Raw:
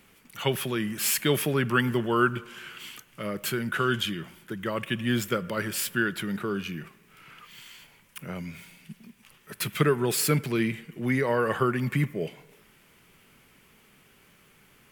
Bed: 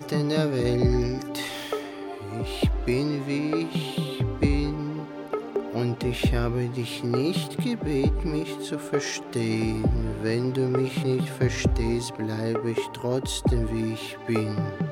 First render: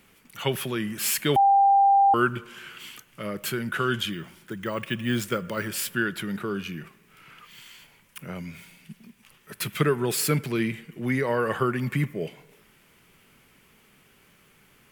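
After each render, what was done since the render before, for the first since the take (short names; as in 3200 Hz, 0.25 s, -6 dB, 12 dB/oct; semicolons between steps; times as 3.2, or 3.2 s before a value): 1.36–2.14 bleep 793 Hz -14.5 dBFS; 4.12–5.68 careless resampling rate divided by 2×, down none, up hold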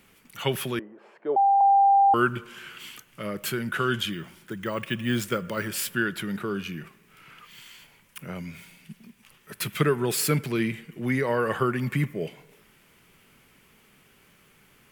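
0.79–1.61 Butterworth band-pass 570 Hz, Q 1.2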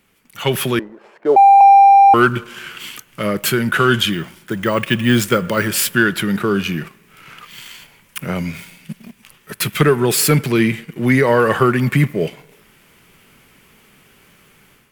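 sample leveller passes 1; AGC gain up to 10 dB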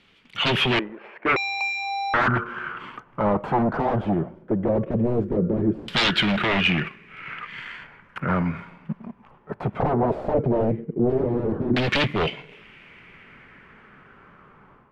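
wavefolder -17 dBFS; LFO low-pass saw down 0.17 Hz 320–3800 Hz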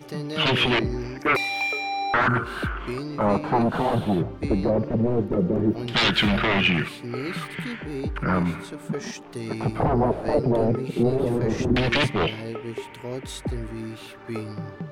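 add bed -6.5 dB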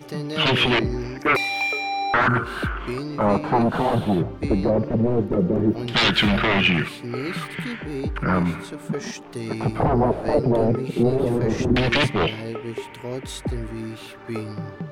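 gain +2 dB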